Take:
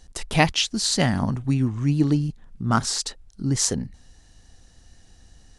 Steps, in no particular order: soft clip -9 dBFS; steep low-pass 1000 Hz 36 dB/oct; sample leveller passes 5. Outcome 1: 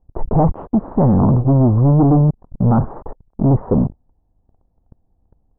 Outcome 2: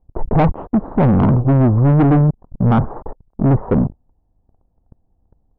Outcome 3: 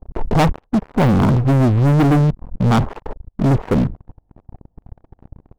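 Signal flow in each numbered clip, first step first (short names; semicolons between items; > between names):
sample leveller > soft clip > steep low-pass; sample leveller > steep low-pass > soft clip; steep low-pass > sample leveller > soft clip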